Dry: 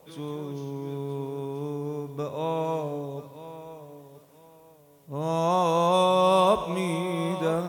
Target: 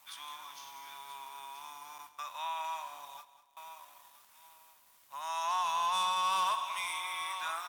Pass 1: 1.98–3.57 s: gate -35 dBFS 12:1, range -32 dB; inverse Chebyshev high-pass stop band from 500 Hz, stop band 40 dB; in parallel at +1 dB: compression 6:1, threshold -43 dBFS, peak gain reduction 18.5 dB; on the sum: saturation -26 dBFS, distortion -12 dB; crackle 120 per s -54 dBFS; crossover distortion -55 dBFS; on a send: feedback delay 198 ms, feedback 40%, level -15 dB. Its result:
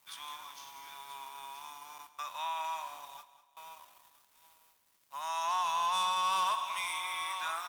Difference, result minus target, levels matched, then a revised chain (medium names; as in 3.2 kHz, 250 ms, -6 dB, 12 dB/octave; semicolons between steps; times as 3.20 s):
compression: peak gain reduction -6 dB; crossover distortion: distortion +5 dB
1.98–3.57 s: gate -35 dBFS 12:1, range -32 dB; inverse Chebyshev high-pass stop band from 500 Hz, stop band 40 dB; in parallel at +1 dB: compression 6:1, threshold -50 dBFS, peak gain reduction 24 dB; on the sum: saturation -26 dBFS, distortion -13 dB; crackle 120 per s -54 dBFS; crossover distortion -61.5 dBFS; on a send: feedback delay 198 ms, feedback 40%, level -15 dB